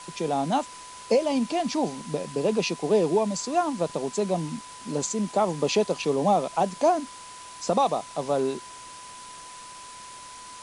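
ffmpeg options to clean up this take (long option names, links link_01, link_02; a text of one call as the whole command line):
ffmpeg -i in.wav -af "bandreject=frequency=1000:width=30,afftdn=noise_reduction=27:noise_floor=-43" out.wav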